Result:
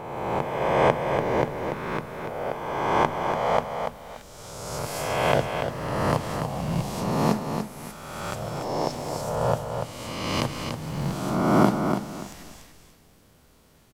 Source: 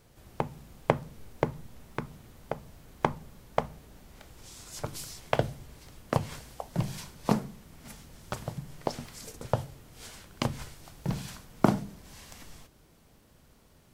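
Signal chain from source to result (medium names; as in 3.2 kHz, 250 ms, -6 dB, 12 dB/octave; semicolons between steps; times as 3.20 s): reverse spectral sustain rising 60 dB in 1.61 s; bass shelf 130 Hz -4 dB; feedback delay 289 ms, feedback 25%, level -6.5 dB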